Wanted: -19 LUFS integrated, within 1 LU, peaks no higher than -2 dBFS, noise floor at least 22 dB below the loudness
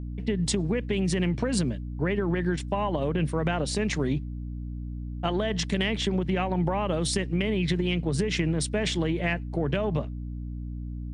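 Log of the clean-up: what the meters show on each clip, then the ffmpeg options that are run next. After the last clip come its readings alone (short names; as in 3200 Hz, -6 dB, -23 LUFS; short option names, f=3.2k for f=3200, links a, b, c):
hum 60 Hz; harmonics up to 300 Hz; hum level -32 dBFS; loudness -28.0 LUFS; peak -12.0 dBFS; loudness target -19.0 LUFS
-> -af "bandreject=f=60:t=h:w=4,bandreject=f=120:t=h:w=4,bandreject=f=180:t=h:w=4,bandreject=f=240:t=h:w=4,bandreject=f=300:t=h:w=4"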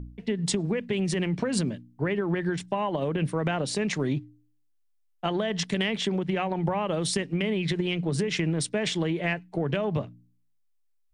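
hum none; loudness -28.0 LUFS; peak -12.5 dBFS; loudness target -19.0 LUFS
-> -af "volume=9dB"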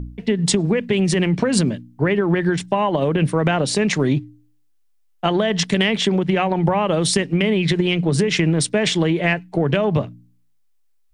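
loudness -19.0 LUFS; peak -3.5 dBFS; noise floor -59 dBFS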